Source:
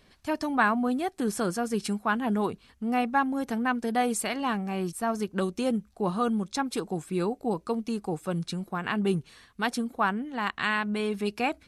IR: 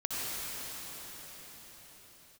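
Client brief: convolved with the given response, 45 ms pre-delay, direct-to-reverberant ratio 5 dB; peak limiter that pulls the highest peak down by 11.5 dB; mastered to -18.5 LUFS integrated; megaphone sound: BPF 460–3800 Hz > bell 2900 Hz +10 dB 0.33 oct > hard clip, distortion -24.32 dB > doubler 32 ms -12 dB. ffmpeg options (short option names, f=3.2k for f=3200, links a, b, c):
-filter_complex "[0:a]alimiter=limit=-22dB:level=0:latency=1,asplit=2[a][b];[1:a]atrim=start_sample=2205,adelay=45[c];[b][c]afir=irnorm=-1:irlink=0,volume=-12.5dB[d];[a][d]amix=inputs=2:normalize=0,highpass=460,lowpass=3.8k,equalizer=f=2.9k:t=o:w=0.33:g=10,asoftclip=type=hard:threshold=-23dB,asplit=2[e][f];[f]adelay=32,volume=-12dB[g];[e][g]amix=inputs=2:normalize=0,volume=16dB"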